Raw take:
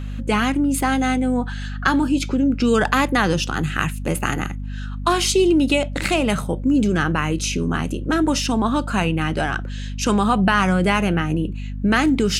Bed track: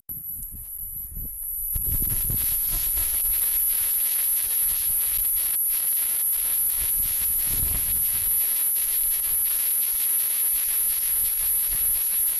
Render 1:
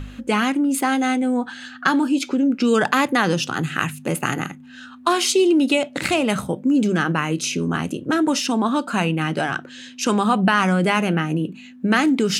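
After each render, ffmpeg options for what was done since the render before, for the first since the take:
-af "bandreject=f=50:t=h:w=4,bandreject=f=100:t=h:w=4,bandreject=f=150:t=h:w=4,bandreject=f=200:t=h:w=4"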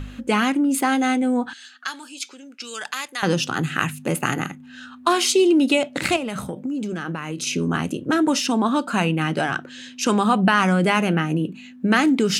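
-filter_complex "[0:a]asettb=1/sr,asplit=3[s0][s1][s2];[s0]atrim=end=1.534[s3];[s1]atrim=start=1.53:end=3.23,asetpts=PTS-STARTPTS,afade=t=in:d=0.004:c=qsin,afade=t=out:st=1.696:d=0.004:c=qsin,bandpass=f=7100:t=q:w=0.62[s4];[s2]atrim=start=3.226[s5];[s3][s4]acrossfade=d=0.004:c1=hsin:c2=qsin[s6];[s6][s5]acrossfade=d=0.004:c1=qsin:c2=hsin,asettb=1/sr,asplit=3[s7][s8][s9];[s7]atrim=end=6.164[s10];[s8]atrim=start=6.16:end=7.47,asetpts=PTS-STARTPTS,afade=t=in:d=0.004:c=qsin,afade=t=out:st=1.306:d=0.004:c=qsin,acompressor=threshold=0.0708:ratio=12:attack=3.2:release=140:knee=1:detection=peak[s11];[s9]atrim=start=7.466[s12];[s10][s11]acrossfade=d=0.004:c1=hsin:c2=qsin[s13];[s13][s12]acrossfade=d=0.004:c1=qsin:c2=hsin"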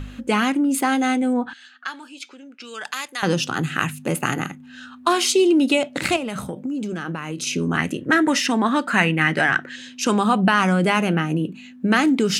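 -filter_complex "[0:a]asettb=1/sr,asplit=3[s0][s1][s2];[s0]atrim=end=1.334[s3];[s1]atrim=start=1.33:end=2.84,asetpts=PTS-STARTPTS,afade=t=in:d=0.004:c=qsin,afade=t=out:st=1.506:d=0.004:c=qsin,bass=f=250:g=0,treble=f=4000:g=-11[s4];[s2]atrim=start=2.836[s5];[s3][s4]acrossfade=d=0.004:c1=hsin:c2=qsin[s6];[s6][s5]acrossfade=d=0.004:c1=qsin:c2=hsin,asettb=1/sr,asplit=3[s7][s8][s9];[s7]atrim=end=7.774[s10];[s8]atrim=start=7.77:end=9.76,asetpts=PTS-STARTPTS,afade=t=in:d=0.004:c=qsin,afade=t=out:st=1.986:d=0.004:c=qsin,equalizer=f=1900:w=2.7:g=14.5[s11];[s9]atrim=start=9.756[s12];[s10][s11]acrossfade=d=0.004:c1=hsin:c2=qsin[s13];[s13][s12]acrossfade=d=0.004:c1=qsin:c2=hsin"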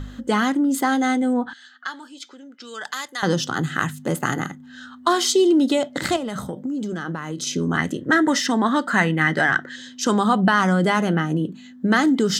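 -af "superequalizer=12b=0.251:16b=0.501"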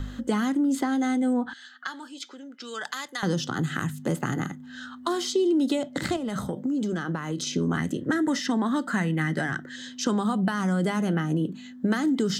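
-filter_complex "[0:a]acrossover=split=330|6500[s0][s1][s2];[s0]acompressor=threshold=0.0631:ratio=4[s3];[s1]acompressor=threshold=0.0316:ratio=4[s4];[s2]acompressor=threshold=0.00447:ratio=4[s5];[s3][s4][s5]amix=inputs=3:normalize=0"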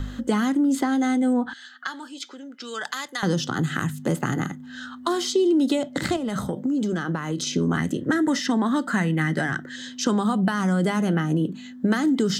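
-af "volume=1.41"

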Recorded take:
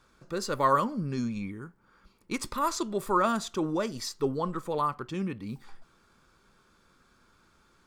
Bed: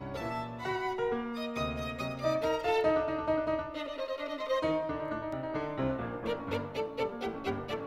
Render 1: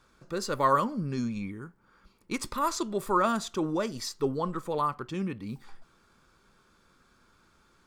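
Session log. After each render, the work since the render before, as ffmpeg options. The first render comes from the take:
-af anull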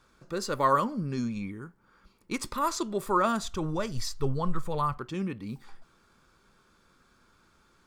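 -filter_complex "[0:a]asplit=3[s0][s1][s2];[s0]afade=t=out:st=3.41:d=0.02[s3];[s1]asubboost=boost=11.5:cutoff=89,afade=t=in:st=3.41:d=0.02,afade=t=out:st=4.97:d=0.02[s4];[s2]afade=t=in:st=4.97:d=0.02[s5];[s3][s4][s5]amix=inputs=3:normalize=0"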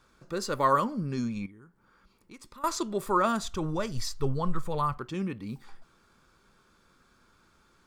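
-filter_complex "[0:a]asettb=1/sr,asplit=3[s0][s1][s2];[s0]atrim=end=1.464[s3];[s1]atrim=start=1.46:end=2.64,asetpts=PTS-STARTPTS,afade=t=in:d=0.004:c=qsin,afade=t=out:st=1.176:d=0.004:c=qsin,acompressor=threshold=0.00112:ratio=2:attack=3.2:release=140:knee=1:detection=peak[s4];[s2]atrim=start=2.636[s5];[s3][s4]acrossfade=d=0.004:c1=hsin:c2=qsin[s6];[s6][s5]acrossfade=d=0.004:c1=qsin:c2=hsin"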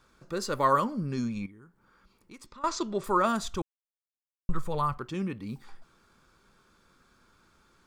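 -filter_complex "[0:a]asettb=1/sr,asplit=3[s0][s1][s2];[s0]atrim=end=2.464[s3];[s1]atrim=start=2.46:end=3.04,asetpts=PTS-STARTPTS,afade=t=in:d=0.004:c=qsin,afade=t=out:st=0.576:d=0.004:c=qsin,lowpass=f=6900:w=0.5412,lowpass=f=6900:w=1.3066[s4];[s2]atrim=start=3.036[s5];[s3][s4]acrossfade=d=0.004:c1=hsin:c2=qsin[s6];[s6][s5]acrossfade=d=0.004:c1=qsin:c2=hsin,asplit=3[s7][s8][s9];[s7]atrim=end=3.62,asetpts=PTS-STARTPTS,afade=t=out:st=3.616:d=0.004:c=hsin[s10];[s8]atrim=start=3.62:end=4.49,asetpts=PTS-STARTPTS,volume=0[s11];[s9]atrim=start=4.49,asetpts=PTS-STARTPTS,afade=t=in:d=0.004:c=hsin[s12];[s10][s11][s12]concat=n=3:v=0:a=1"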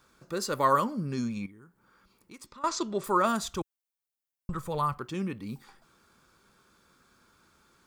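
-af "highpass=f=68:p=1,highshelf=f=9500:g=8.5"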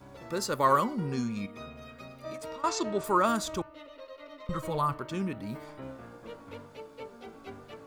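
-filter_complex "[1:a]volume=0.299[s0];[0:a][s0]amix=inputs=2:normalize=0"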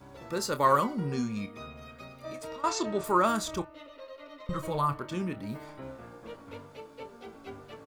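-filter_complex "[0:a]asplit=2[s0][s1];[s1]adelay=28,volume=0.266[s2];[s0][s2]amix=inputs=2:normalize=0"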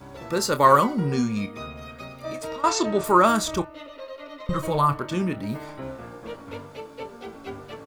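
-af "volume=2.37"

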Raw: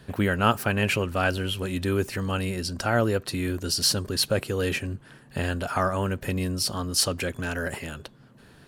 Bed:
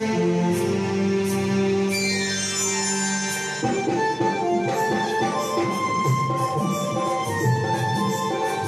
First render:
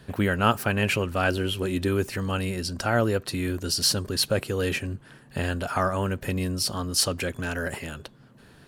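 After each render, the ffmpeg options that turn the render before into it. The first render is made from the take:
-filter_complex "[0:a]asettb=1/sr,asplit=3[s0][s1][s2];[s0]atrim=end=1.284[s3];[s1]atrim=start=1.28:end=1.88,asetpts=PTS-STARTPTS,afade=t=in:d=0.004:c=qsin,afade=t=out:st=0.596:d=0.004:c=qsin,equalizer=f=350:w=2.4:g=6.5[s4];[s2]atrim=start=1.876[s5];[s3][s4]acrossfade=d=0.004:c1=hsin:c2=qsin[s6];[s6][s5]acrossfade=d=0.004:c1=qsin:c2=hsin"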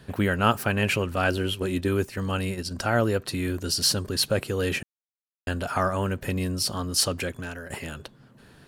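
-filter_complex "[0:a]asettb=1/sr,asplit=3[s0][s1][s2];[s0]atrim=end=1.164[s3];[s1]atrim=start=1.16:end=2.71,asetpts=PTS-STARTPTS,afade=t=in:d=0.004:c=qsin,afade=t=out:st=1.546:d=0.004:c=qsin,agate=range=0.501:threshold=0.0282:ratio=16:release=100:detection=peak[s4];[s2]atrim=start=2.706[s5];[s3][s4]acrossfade=d=0.004:c1=hsin:c2=qsin[s6];[s6][s5]acrossfade=d=0.004:c1=qsin:c2=hsin,asplit=4[s7][s8][s9][s10];[s7]atrim=end=4.83,asetpts=PTS-STARTPTS,afade=t=out:st=4.826:d=0.004:c=hsin[s11];[s8]atrim=start=4.83:end=5.47,asetpts=PTS-STARTPTS,volume=0[s12];[s9]atrim=start=5.47:end=7.7,asetpts=PTS-STARTPTS,afade=t=in:d=0.004:c=hsin,afade=t=out:st=1.71:d=0.52:silence=0.223872[s13];[s10]atrim=start=7.7,asetpts=PTS-STARTPTS,afade=t=in:d=0.004:c=hsin:silence=0.223872[s14];[s11][s12][s13][s14]concat=n=4:v=0:a=1"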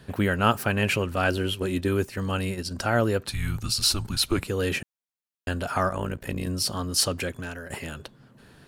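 -filter_complex "[0:a]asettb=1/sr,asplit=3[s0][s1][s2];[s0]atrim=end=3.274[s3];[s1]atrim=start=3.27:end=4.47,asetpts=PTS-STARTPTS,afade=t=in:d=0.004:c=qsin,afade=t=out:st=1.196:d=0.004:c=qsin,afreqshift=-200[s4];[s2]atrim=start=4.466[s5];[s3][s4]acrossfade=d=0.004:c1=hsin:c2=qsin[s6];[s6][s5]acrossfade=d=0.004:c1=qsin:c2=hsin,asettb=1/sr,asplit=3[s7][s8][s9];[s7]atrim=end=5.894[s10];[s8]atrim=start=5.89:end=6.47,asetpts=PTS-STARTPTS,afade=t=in:d=0.004:c=qsin,afade=t=out:st=0.576:d=0.004:c=qsin,tremolo=f=57:d=0.788[s11];[s9]atrim=start=6.466[s12];[s10][s11]acrossfade=d=0.004:c1=hsin:c2=qsin[s13];[s13][s12]acrossfade=d=0.004:c1=qsin:c2=hsin"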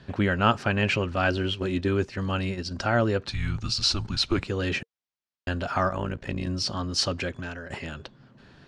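-af "lowpass=f=6000:w=0.5412,lowpass=f=6000:w=1.3066,bandreject=f=460:w=13"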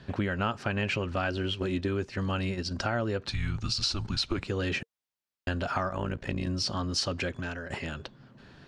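-af "acompressor=threshold=0.0501:ratio=6"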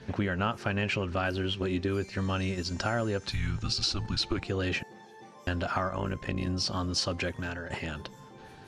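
-filter_complex "[1:a]volume=0.0398[s0];[0:a][s0]amix=inputs=2:normalize=0"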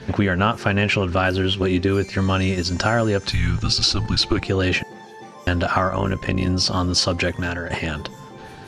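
-af "volume=3.35"

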